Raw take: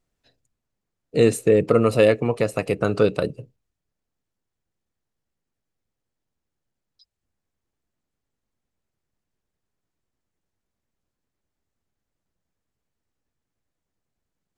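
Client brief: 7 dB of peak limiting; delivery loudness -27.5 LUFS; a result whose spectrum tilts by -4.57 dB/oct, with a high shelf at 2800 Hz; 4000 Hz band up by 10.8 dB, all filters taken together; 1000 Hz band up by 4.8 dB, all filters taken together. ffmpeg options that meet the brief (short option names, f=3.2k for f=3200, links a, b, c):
-af "equalizer=f=1k:t=o:g=5,highshelf=f=2.8k:g=6.5,equalizer=f=4k:t=o:g=8,volume=-7dB,alimiter=limit=-14dB:level=0:latency=1"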